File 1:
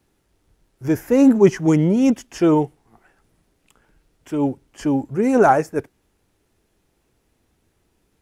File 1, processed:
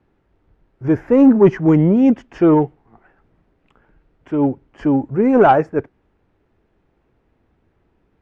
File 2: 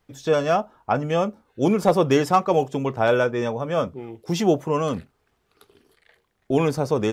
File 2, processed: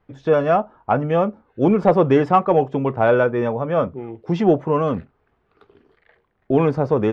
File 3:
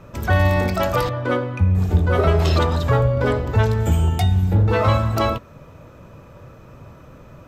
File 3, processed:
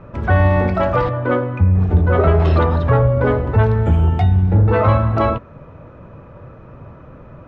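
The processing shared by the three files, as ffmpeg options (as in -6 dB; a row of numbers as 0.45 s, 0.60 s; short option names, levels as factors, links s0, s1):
-af "lowpass=1900,asoftclip=type=tanh:threshold=0.531,volume=1.58"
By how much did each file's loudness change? +3.0 LU, +3.5 LU, +3.0 LU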